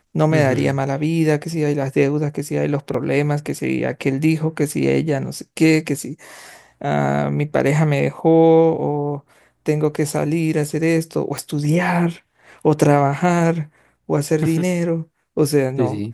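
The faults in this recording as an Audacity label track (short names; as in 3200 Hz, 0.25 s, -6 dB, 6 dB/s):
2.940000	2.940000	gap 4.1 ms
11.380000	11.380000	pop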